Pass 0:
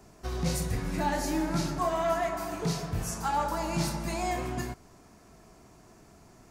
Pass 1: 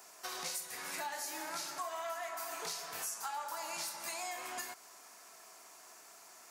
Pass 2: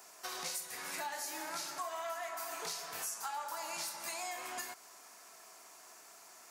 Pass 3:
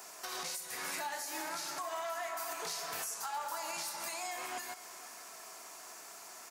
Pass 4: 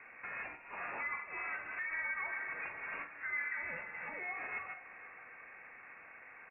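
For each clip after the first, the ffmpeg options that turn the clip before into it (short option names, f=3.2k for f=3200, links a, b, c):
-af "highpass=890,highshelf=f=7.3k:g=9.5,acompressor=threshold=-42dB:ratio=6,volume=3.5dB"
-af anull
-af "alimiter=level_in=11.5dB:limit=-24dB:level=0:latency=1:release=215,volume=-11.5dB,acrusher=bits=9:mode=log:mix=0:aa=0.000001,aecho=1:1:485:0.15,volume=6dB"
-filter_complex "[0:a]asplit=2[a][b];[b]adelay=45,volume=-9dB[c];[a][c]amix=inputs=2:normalize=0,lowpass=f=2.5k:t=q:w=0.5098,lowpass=f=2.5k:t=q:w=0.6013,lowpass=f=2.5k:t=q:w=0.9,lowpass=f=2.5k:t=q:w=2.563,afreqshift=-2900"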